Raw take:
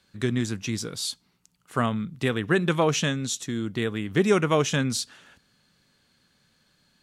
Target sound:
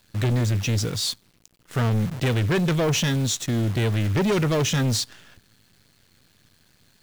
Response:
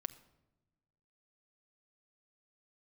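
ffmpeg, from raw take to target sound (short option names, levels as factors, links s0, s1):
-af "equalizer=f=100:t=o:w=0.67:g=12,equalizer=f=1000:t=o:w=0.67:g=-8,equalizer=f=10000:t=o:w=0.67:g=-6,acrusher=bits=8:dc=4:mix=0:aa=0.000001,asoftclip=type=tanh:threshold=0.0501,volume=2.37"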